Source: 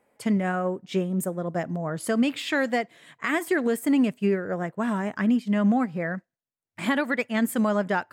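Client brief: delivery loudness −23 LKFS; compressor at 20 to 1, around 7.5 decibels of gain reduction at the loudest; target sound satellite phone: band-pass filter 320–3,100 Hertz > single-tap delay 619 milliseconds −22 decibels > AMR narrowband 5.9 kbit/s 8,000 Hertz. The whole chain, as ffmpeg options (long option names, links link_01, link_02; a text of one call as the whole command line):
ffmpeg -i in.wav -af "acompressor=threshold=-25dB:ratio=20,highpass=320,lowpass=3100,aecho=1:1:619:0.0794,volume=12dB" -ar 8000 -c:a libopencore_amrnb -b:a 5900 out.amr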